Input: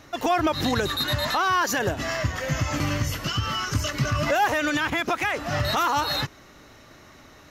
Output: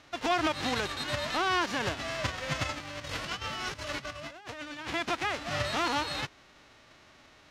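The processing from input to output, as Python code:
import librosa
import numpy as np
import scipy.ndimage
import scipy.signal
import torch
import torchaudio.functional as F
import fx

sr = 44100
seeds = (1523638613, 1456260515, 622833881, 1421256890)

y = fx.envelope_flatten(x, sr, power=0.3)
y = fx.over_compress(y, sr, threshold_db=-30.0, ratio=-0.5, at=(2.69, 4.94))
y = scipy.signal.sosfilt(scipy.signal.butter(2, 3800.0, 'lowpass', fs=sr, output='sos'), y)
y = y * 10.0 ** (-5.0 / 20.0)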